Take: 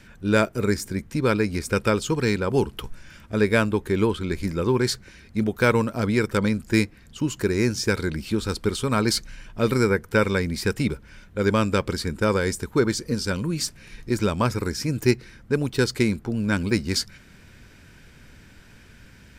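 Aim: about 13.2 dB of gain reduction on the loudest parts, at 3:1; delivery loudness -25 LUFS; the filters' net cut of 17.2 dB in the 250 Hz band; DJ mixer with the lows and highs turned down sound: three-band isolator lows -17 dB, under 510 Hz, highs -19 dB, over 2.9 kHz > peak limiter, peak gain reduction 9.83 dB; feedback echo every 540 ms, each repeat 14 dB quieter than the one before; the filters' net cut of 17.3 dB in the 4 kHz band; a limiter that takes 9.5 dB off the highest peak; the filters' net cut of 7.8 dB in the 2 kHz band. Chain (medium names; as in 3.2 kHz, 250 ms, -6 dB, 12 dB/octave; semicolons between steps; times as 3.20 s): peaking EQ 250 Hz -5 dB; peaking EQ 2 kHz -8.5 dB; peaking EQ 4 kHz -5.5 dB; compression 3:1, threshold -36 dBFS; peak limiter -31 dBFS; three-band isolator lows -17 dB, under 510 Hz, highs -19 dB, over 2.9 kHz; feedback delay 540 ms, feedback 20%, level -14 dB; trim +28.5 dB; peak limiter -13 dBFS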